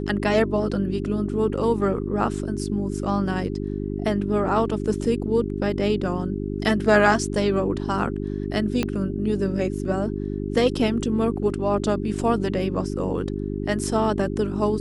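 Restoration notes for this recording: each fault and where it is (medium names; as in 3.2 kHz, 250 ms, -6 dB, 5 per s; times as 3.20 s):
hum 50 Hz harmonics 8 -28 dBFS
8.83 s: pop -9 dBFS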